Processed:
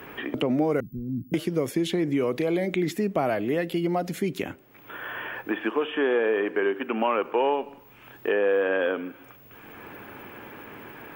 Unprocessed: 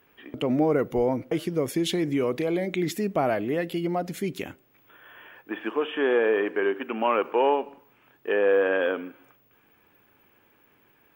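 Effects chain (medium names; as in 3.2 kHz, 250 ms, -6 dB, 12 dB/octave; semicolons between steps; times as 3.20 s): 0.80–1.34 s: inverse Chebyshev band-stop 560–9700 Hz, stop band 50 dB; three bands compressed up and down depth 70%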